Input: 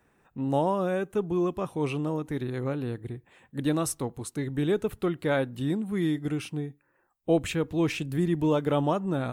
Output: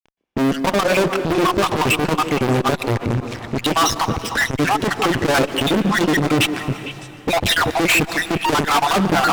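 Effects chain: random spectral dropouts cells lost 61%; LPF 4900 Hz 24 dB/oct; in parallel at -3 dB: limiter -25 dBFS, peak gain reduction 9.5 dB; on the sum: notch comb 180 Hz; added harmonics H 3 -37 dB, 7 -28 dB, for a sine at -13 dBFS; fuzz box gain 50 dB, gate -58 dBFS; delay with a stepping band-pass 0.152 s, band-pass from 340 Hz, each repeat 1.4 oct, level -7 dB; plate-style reverb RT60 3.3 s, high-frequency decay 0.8×, pre-delay 0.11 s, DRR 15 dB; core saturation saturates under 310 Hz

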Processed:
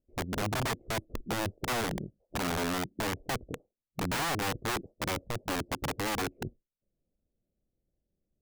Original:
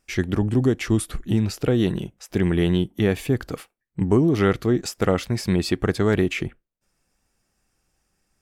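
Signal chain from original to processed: elliptic low-pass 610 Hz, stop band 60 dB; wrapped overs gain 18 dB; gain -8 dB

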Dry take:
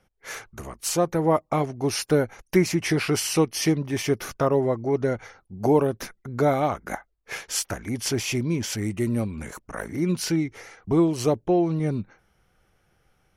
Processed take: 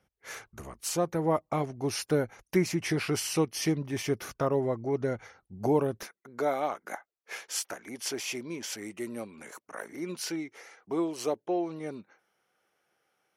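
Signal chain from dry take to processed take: HPF 47 Hz 12 dB/oct, from 6.03 s 360 Hz; gain -6 dB

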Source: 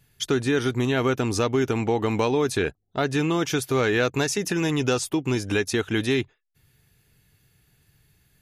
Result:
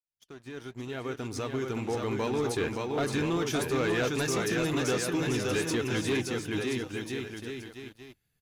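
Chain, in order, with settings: opening faded in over 2.77 s; flange 1 Hz, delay 1.2 ms, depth 6.9 ms, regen +80%; on a send: bouncing-ball echo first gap 0.57 s, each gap 0.8×, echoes 5; on the sum: sample leveller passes 2; gain -8 dB

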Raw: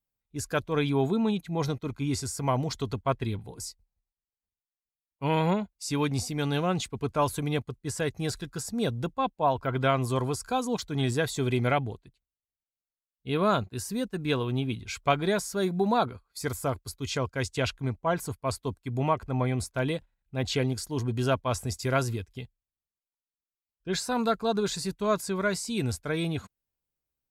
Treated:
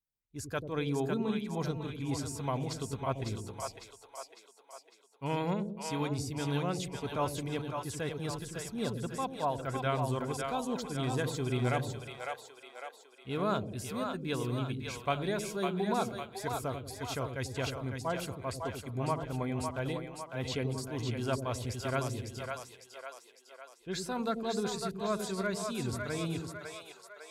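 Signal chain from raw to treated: split-band echo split 490 Hz, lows 90 ms, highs 0.553 s, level -4.5 dB; gain -7.5 dB

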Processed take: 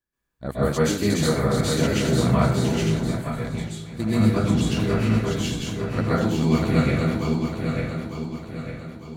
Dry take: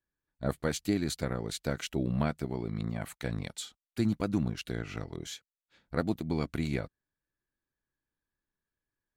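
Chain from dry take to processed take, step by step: regenerating reverse delay 0.451 s, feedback 66%, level -3 dB; 2.82–4.26 gate -30 dBFS, range -11 dB; plate-style reverb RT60 0.59 s, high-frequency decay 0.7×, pre-delay 0.115 s, DRR -9.5 dB

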